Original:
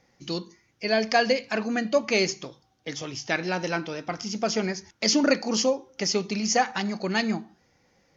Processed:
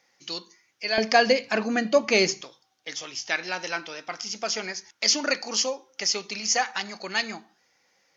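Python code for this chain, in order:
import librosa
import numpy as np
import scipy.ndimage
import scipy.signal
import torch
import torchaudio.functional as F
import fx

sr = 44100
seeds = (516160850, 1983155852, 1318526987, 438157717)

y = fx.highpass(x, sr, hz=fx.steps((0.0, 1400.0), (0.98, 190.0), (2.41, 1400.0)), slope=6)
y = F.gain(torch.from_numpy(y), 3.0).numpy()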